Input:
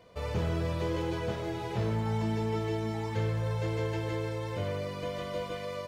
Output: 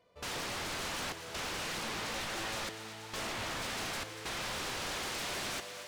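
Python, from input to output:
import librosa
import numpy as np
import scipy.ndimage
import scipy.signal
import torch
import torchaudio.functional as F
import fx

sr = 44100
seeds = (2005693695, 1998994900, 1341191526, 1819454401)

p1 = fx.low_shelf(x, sr, hz=260.0, db=-7.0)
p2 = fx.rider(p1, sr, range_db=10, speed_s=0.5)
p3 = p1 + (p2 * 10.0 ** (2.5 / 20.0))
p4 = 10.0 ** (-24.0 / 20.0) * np.tanh(p3 / 10.0 ** (-24.0 / 20.0))
p5 = fx.step_gate(p4, sr, bpm=67, pattern='.xxxx.xxxxxx.', floor_db=-24.0, edge_ms=4.5)
p6 = 10.0 ** (-38.5 / 20.0) * (np.abs((p5 / 10.0 ** (-38.5 / 20.0) + 3.0) % 4.0 - 2.0) - 1.0)
p7 = p6 + fx.echo_thinned(p6, sr, ms=238, feedback_pct=80, hz=420.0, wet_db=-11.5, dry=0)
p8 = fx.doppler_dist(p7, sr, depth_ms=0.14)
y = p8 * 10.0 ** (5.0 / 20.0)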